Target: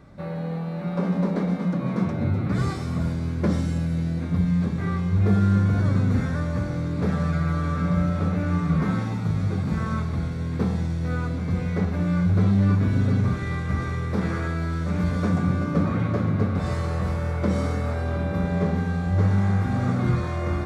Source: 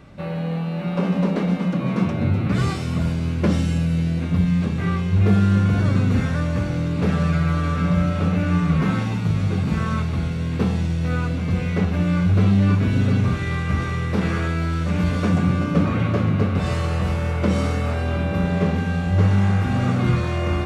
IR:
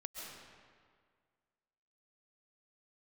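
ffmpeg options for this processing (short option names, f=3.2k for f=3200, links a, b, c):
-filter_complex "[0:a]equalizer=f=2.8k:t=o:w=0.41:g=-11.5,asplit=2[a][b];[1:a]atrim=start_sample=2205,asetrate=66150,aresample=44100,lowpass=5.1k[c];[b][c]afir=irnorm=-1:irlink=0,volume=-4.5dB[d];[a][d]amix=inputs=2:normalize=0,volume=-5dB"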